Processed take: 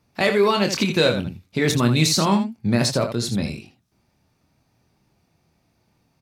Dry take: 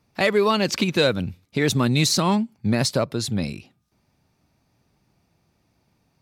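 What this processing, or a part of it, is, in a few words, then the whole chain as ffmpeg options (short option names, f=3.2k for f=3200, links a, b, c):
slapback doubling: -filter_complex "[0:a]asplit=3[a][b][c];[b]adelay=25,volume=-7dB[d];[c]adelay=81,volume=-9dB[e];[a][d][e]amix=inputs=3:normalize=0"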